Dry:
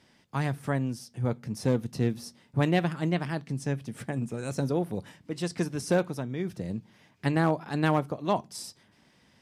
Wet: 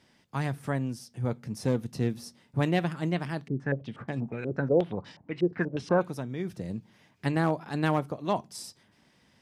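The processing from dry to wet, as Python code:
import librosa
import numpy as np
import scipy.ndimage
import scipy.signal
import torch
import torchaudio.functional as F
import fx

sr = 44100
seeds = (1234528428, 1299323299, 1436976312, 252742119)

y = fx.filter_held_lowpass(x, sr, hz=8.3, low_hz=390.0, high_hz=4700.0, at=(3.48, 6.01))
y = y * librosa.db_to_amplitude(-1.5)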